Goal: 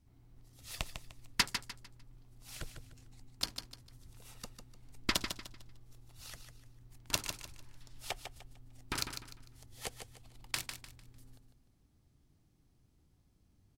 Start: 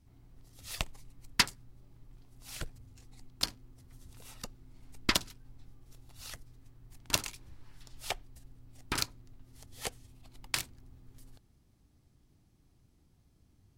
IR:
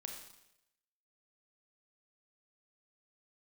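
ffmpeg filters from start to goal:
-af "aecho=1:1:150|300|450|600:0.398|0.123|0.0383|0.0119,volume=-4dB"

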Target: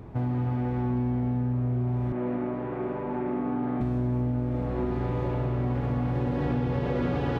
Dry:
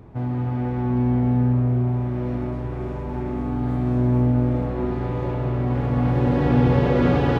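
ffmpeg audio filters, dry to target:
ffmpeg -i in.wav -filter_complex "[0:a]asettb=1/sr,asplit=3[link_01][link_02][link_03];[link_01]atrim=end=2.124[link_04];[link_02]atrim=start=2.12:end=3.81,asetpts=PTS-STARTPTS,afade=type=in:duration=0.004:curve=qsin,afade=type=out:start_time=1.686:duration=0.004:curve=qsin,acrossover=split=170 2900:gain=0.0708 1 0.1[link_05][link_06][link_07];[link_05][link_06][link_07]amix=inputs=3:normalize=0[link_08];[link_03]atrim=start=3.806[link_09];[link_04][link_08]acrossfade=duration=0.004:curve1=hsin:curve2=qsin[link_10];[link_10][link_09]acrossfade=duration=0.004:curve1=qsin:curve2=hsin,acompressor=threshold=-26dB:ratio=6,volume=1.5dB" out.wav

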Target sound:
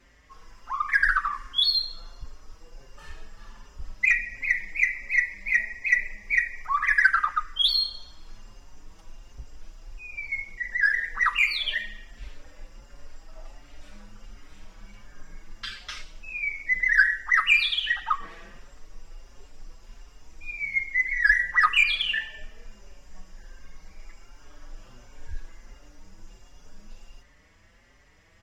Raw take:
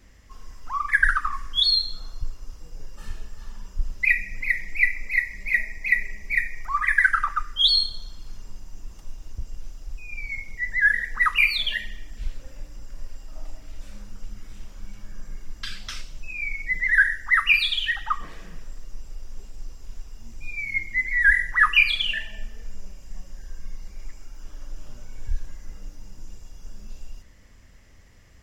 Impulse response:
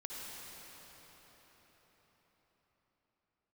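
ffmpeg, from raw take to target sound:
-filter_complex "[0:a]asplit=2[link_01][link_02];[link_02]highpass=frequency=720:poles=1,volume=10dB,asoftclip=type=tanh:threshold=-5dB[link_03];[link_01][link_03]amix=inputs=2:normalize=0,lowpass=frequency=2500:poles=1,volume=-6dB,asplit=2[link_04][link_05];[link_05]adelay=5.3,afreqshift=1.4[link_06];[link_04][link_06]amix=inputs=2:normalize=1"

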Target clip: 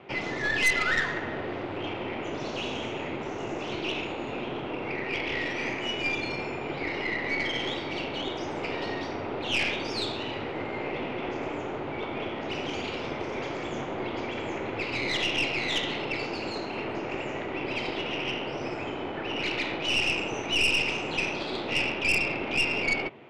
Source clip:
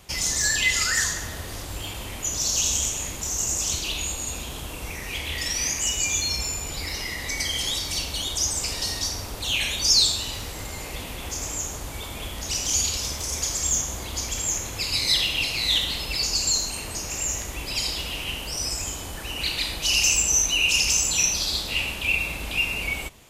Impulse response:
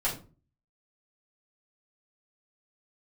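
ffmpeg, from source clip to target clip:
-af "highpass=frequency=140:width=0.5412,highpass=frequency=140:width=1.3066,equalizer=frequency=180:width_type=q:width=4:gain=-8,equalizer=frequency=370:width_type=q:width=4:gain=6,equalizer=frequency=1100:width_type=q:width=4:gain=-5,equalizer=frequency=1700:width_type=q:width=4:gain=-6,lowpass=frequency=2300:width=0.5412,lowpass=frequency=2300:width=1.3066,aeval=exprs='0.158*(cos(1*acos(clip(val(0)/0.158,-1,1)))-cos(1*PI/2))+0.0251*(cos(5*acos(clip(val(0)/0.158,-1,1)))-cos(5*PI/2))+0.0251*(cos(6*acos(clip(val(0)/0.158,-1,1)))-cos(6*PI/2))':channel_layout=same,volume=1.5dB"

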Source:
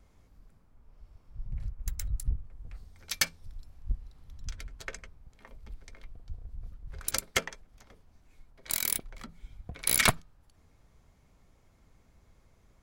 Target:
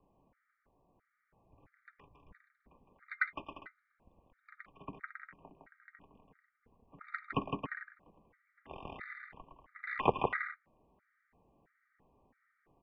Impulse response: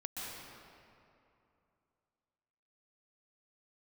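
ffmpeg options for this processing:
-af "aecho=1:1:160|272|350.4|405.3|443.7:0.631|0.398|0.251|0.158|0.1,highpass=frequency=270:width_type=q:width=0.5412,highpass=frequency=270:width_type=q:width=1.307,lowpass=frequency=2400:width_type=q:width=0.5176,lowpass=frequency=2400:width_type=q:width=0.7071,lowpass=frequency=2400:width_type=q:width=1.932,afreqshift=-250,afftfilt=real='re*gt(sin(2*PI*1.5*pts/sr)*(1-2*mod(floor(b*sr/1024/1200),2)),0)':imag='im*gt(sin(2*PI*1.5*pts/sr)*(1-2*mod(floor(b*sr/1024/1200),2)),0)':win_size=1024:overlap=0.75,volume=1dB"

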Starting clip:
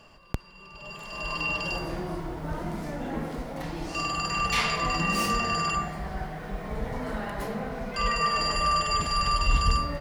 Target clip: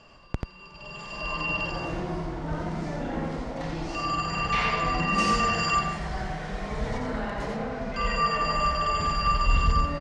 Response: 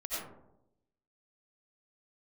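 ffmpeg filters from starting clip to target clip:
-filter_complex "[0:a]lowpass=frequency=7400:width=0.5412,lowpass=frequency=7400:width=1.3066,acrossover=split=2900[link_01][link_02];[link_02]acompressor=threshold=-41dB:ratio=4:attack=1:release=60[link_03];[link_01][link_03]amix=inputs=2:normalize=0,asettb=1/sr,asplit=3[link_04][link_05][link_06];[link_04]atrim=end=5.184[link_07];[link_05]atrim=start=5.18:end=6.98,asetpts=PTS-STARTPTS,afade=type=in:duration=0.004:curve=qsin,afade=type=out:start_time=1.796:duration=0.004:curve=qsin,highshelf=frequency=2900:gain=9.5[link_08];[link_06]atrim=start=6.976[link_09];[link_07][link_08]acrossfade=duration=0.004:curve1=hsin:curve2=qsin[link_10];[link_10][link_09]acrossfade=duration=0.004:curve1=qsin:curve2=hsin,aecho=1:1:87:0.668"

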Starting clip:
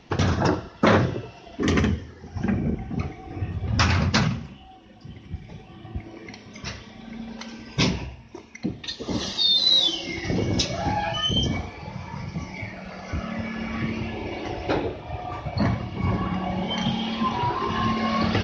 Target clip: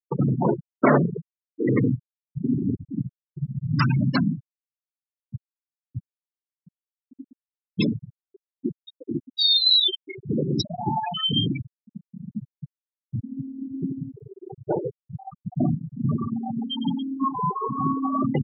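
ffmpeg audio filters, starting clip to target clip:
ffmpeg -i in.wav -af "afreqshift=44,afftfilt=real='re*gte(hypot(re,im),0.224)':imag='im*gte(hypot(re,im),0.224)':win_size=1024:overlap=0.75,volume=1dB" out.wav

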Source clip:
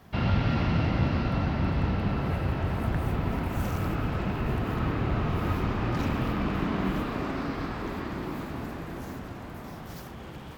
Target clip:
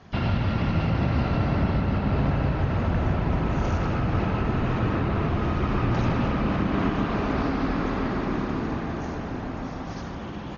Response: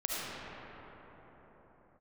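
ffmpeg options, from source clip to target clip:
-filter_complex "[0:a]asoftclip=type=hard:threshold=-15dB,asplit=2[link_01][link_02];[link_02]adelay=150,lowpass=frequency=1600:poles=1,volume=-4dB,asplit=2[link_03][link_04];[link_04]adelay=150,lowpass=frequency=1600:poles=1,volume=0.55,asplit=2[link_05][link_06];[link_06]adelay=150,lowpass=frequency=1600:poles=1,volume=0.55,asplit=2[link_07][link_08];[link_08]adelay=150,lowpass=frequency=1600:poles=1,volume=0.55,asplit=2[link_09][link_10];[link_10]adelay=150,lowpass=frequency=1600:poles=1,volume=0.55,asplit=2[link_11][link_12];[link_12]adelay=150,lowpass=frequency=1600:poles=1,volume=0.55,asplit=2[link_13][link_14];[link_14]adelay=150,lowpass=frequency=1600:poles=1,volume=0.55[link_15];[link_03][link_05][link_07][link_09][link_11][link_13][link_15]amix=inputs=7:normalize=0[link_16];[link_01][link_16]amix=inputs=2:normalize=0,alimiter=limit=-19dB:level=0:latency=1:release=218,asplit=2[link_17][link_18];[1:a]atrim=start_sample=2205[link_19];[link_18][link_19]afir=irnorm=-1:irlink=0,volume=-9.5dB[link_20];[link_17][link_20]amix=inputs=2:normalize=0,volume=1dB" -ar 48000 -c:a ac3 -b:a 32k

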